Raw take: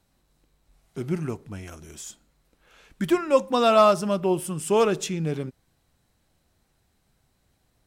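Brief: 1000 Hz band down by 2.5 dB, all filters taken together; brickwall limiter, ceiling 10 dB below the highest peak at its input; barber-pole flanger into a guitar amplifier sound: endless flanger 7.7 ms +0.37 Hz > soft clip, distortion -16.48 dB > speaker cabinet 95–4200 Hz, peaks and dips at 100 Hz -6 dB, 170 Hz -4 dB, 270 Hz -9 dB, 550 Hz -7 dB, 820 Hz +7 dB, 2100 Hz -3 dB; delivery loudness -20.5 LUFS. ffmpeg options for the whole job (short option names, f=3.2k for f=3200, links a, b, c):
-filter_complex "[0:a]equalizer=f=1k:t=o:g=-5.5,alimiter=limit=-18.5dB:level=0:latency=1,asplit=2[a][b];[b]adelay=7.7,afreqshift=0.37[c];[a][c]amix=inputs=2:normalize=1,asoftclip=threshold=-24.5dB,highpass=95,equalizer=f=100:t=q:w=4:g=-6,equalizer=f=170:t=q:w=4:g=-4,equalizer=f=270:t=q:w=4:g=-9,equalizer=f=550:t=q:w=4:g=-7,equalizer=f=820:t=q:w=4:g=7,equalizer=f=2.1k:t=q:w=4:g=-3,lowpass=f=4.2k:w=0.5412,lowpass=f=4.2k:w=1.3066,volume=16.5dB"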